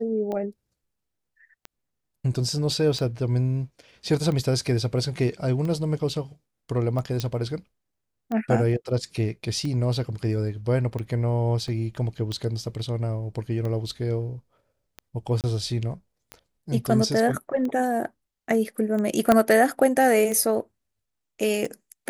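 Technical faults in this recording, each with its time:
tick 45 rpm -20 dBFS
7.2 pop -13 dBFS
11.68 gap 2.1 ms
15.41–15.44 gap 28 ms
19.32 pop -5 dBFS

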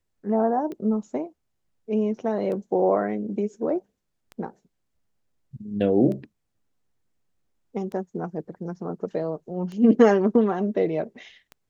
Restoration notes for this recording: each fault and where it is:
tick 33 1/3 rpm -24 dBFS

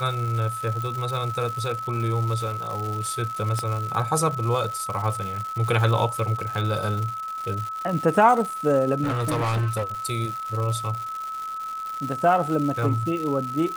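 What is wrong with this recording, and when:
crackle 270/s -30 dBFS
tone 1300 Hz -29 dBFS
0.82 pop
3.59 pop -13 dBFS
9.03–9.84 clipped -21 dBFS

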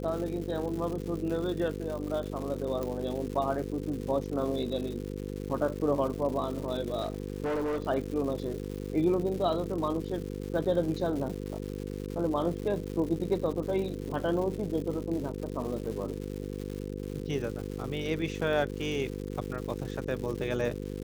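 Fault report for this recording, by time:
buzz 50 Hz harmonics 10 -37 dBFS
crackle 260/s -37 dBFS
2.83 pop
7.02–7.84 clipped -27.5 dBFS

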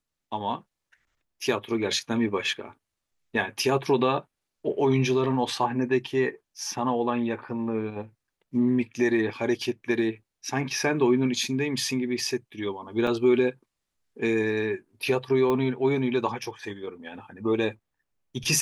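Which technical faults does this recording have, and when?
13.07 gap 3 ms
15.5 pop -15 dBFS

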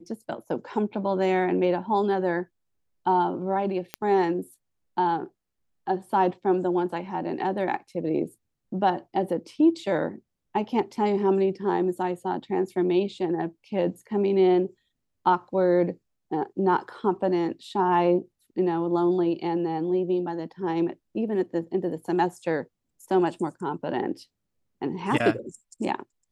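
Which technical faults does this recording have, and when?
3.94 pop -13 dBFS

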